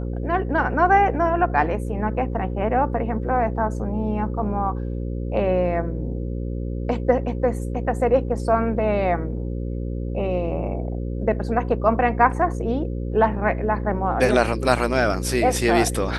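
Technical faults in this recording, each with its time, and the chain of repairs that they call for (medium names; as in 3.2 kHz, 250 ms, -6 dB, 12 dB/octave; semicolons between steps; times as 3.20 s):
buzz 60 Hz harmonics 9 -27 dBFS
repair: de-hum 60 Hz, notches 9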